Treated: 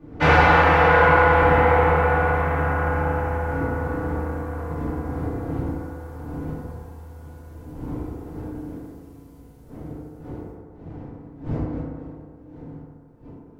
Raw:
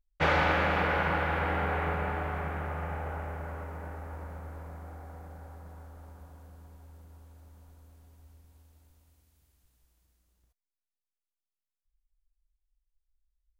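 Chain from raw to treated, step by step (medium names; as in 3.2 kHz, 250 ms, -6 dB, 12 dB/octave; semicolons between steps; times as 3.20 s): wind noise 260 Hz -46 dBFS; FDN reverb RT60 1.8 s, low-frequency decay 0.75×, high-frequency decay 0.3×, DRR -9.5 dB; trim +1.5 dB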